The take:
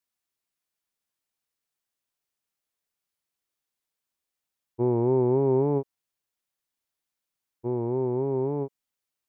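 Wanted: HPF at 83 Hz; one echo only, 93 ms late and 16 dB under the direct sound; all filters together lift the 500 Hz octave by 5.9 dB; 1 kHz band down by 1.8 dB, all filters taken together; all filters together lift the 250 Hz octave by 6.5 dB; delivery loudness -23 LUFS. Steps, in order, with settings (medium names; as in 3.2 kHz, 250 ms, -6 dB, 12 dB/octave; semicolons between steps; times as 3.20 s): high-pass 83 Hz; peaking EQ 250 Hz +6.5 dB; peaking EQ 500 Hz +6 dB; peaking EQ 1 kHz -5 dB; delay 93 ms -16 dB; trim -3 dB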